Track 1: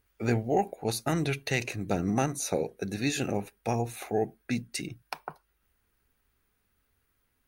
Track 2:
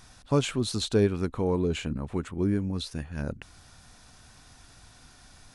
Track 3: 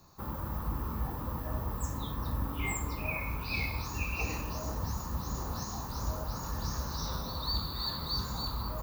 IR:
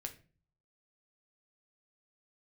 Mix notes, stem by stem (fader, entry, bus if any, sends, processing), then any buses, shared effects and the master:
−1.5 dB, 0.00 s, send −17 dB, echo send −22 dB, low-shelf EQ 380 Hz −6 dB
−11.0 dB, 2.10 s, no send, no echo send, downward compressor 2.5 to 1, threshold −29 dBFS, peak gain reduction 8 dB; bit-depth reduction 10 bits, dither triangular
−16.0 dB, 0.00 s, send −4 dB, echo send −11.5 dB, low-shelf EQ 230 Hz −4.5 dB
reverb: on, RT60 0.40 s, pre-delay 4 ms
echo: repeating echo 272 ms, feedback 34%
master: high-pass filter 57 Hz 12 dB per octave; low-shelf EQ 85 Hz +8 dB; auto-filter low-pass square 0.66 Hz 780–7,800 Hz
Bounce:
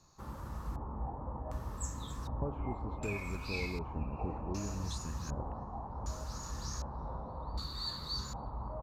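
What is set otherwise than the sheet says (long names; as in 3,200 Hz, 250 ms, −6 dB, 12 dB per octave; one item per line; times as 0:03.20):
stem 1: muted
stem 3 −16.0 dB → −9.0 dB
master: missing high-pass filter 57 Hz 12 dB per octave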